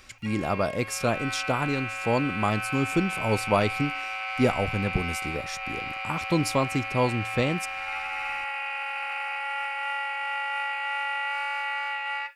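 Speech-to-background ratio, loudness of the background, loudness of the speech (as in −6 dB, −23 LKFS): 2.5 dB, −30.5 LKFS, −28.0 LKFS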